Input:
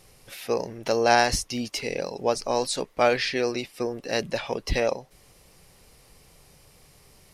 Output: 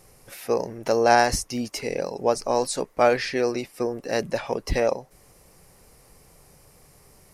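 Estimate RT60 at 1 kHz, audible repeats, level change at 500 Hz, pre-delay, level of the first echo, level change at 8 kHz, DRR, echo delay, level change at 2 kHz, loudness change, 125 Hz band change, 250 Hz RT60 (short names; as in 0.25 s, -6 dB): none, none, +2.5 dB, none, none, +0.5 dB, none, none, 0.0 dB, +1.5 dB, +1.0 dB, none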